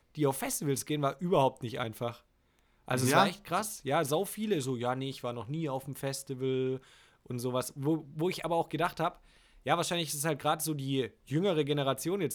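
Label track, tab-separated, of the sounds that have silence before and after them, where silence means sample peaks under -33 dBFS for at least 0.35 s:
2.880000	6.760000	sound
7.300000	9.080000	sound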